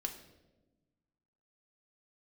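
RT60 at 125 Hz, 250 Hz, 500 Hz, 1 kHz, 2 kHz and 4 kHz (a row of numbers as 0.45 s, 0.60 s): 1.8 s, 1.7 s, 1.3 s, 0.90 s, 0.80 s, 0.75 s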